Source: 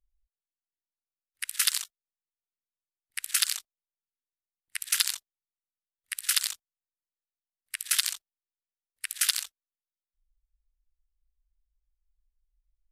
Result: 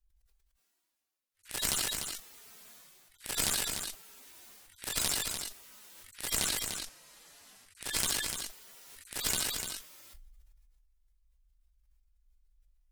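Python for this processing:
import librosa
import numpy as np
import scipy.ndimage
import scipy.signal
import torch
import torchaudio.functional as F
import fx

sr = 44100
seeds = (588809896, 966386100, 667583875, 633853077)

p1 = fx.hpss_only(x, sr, part='harmonic')
p2 = fx.lowpass(p1, sr, hz=11000.0, slope=12, at=(6.37, 8.03))
p3 = fx.cheby_harmonics(p2, sr, harmonics=(6,), levels_db=(-11,), full_scale_db=-18.5)
p4 = p3 + fx.echo_single(p3, sr, ms=296, db=-8.0, dry=0)
p5 = fx.sustainer(p4, sr, db_per_s=24.0)
y = p5 * librosa.db_to_amplitude(6.0)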